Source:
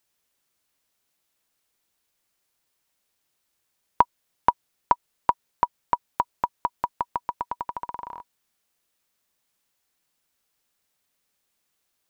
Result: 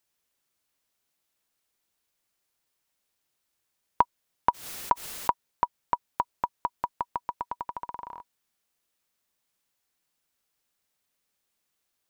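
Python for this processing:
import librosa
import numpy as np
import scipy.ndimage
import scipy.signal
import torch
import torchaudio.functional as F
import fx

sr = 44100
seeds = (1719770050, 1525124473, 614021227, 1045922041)

y = fx.pre_swell(x, sr, db_per_s=84.0, at=(4.49, 5.3))
y = y * 10.0 ** (-3.5 / 20.0)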